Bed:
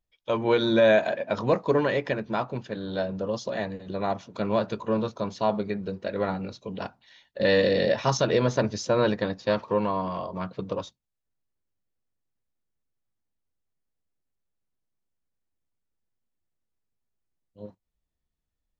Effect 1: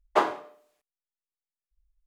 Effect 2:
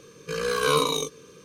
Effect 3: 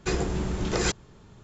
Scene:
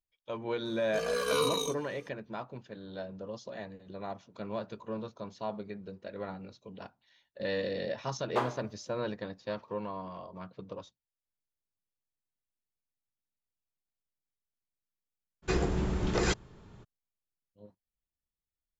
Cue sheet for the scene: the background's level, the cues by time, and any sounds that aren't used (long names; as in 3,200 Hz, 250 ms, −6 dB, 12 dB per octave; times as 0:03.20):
bed −12 dB
0:00.65: mix in 2 −9 dB + comb filter 4.2 ms, depth 68%
0:08.20: mix in 1 −8.5 dB
0:15.42: mix in 3 −2 dB, fades 0.02 s + high-shelf EQ 6,900 Hz −11.5 dB